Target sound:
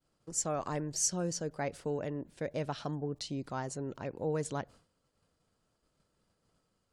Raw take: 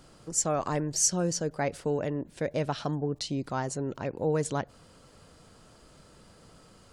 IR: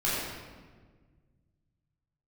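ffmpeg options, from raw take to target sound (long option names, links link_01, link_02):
-af "agate=range=-33dB:threshold=-44dB:ratio=3:detection=peak,volume=-6dB"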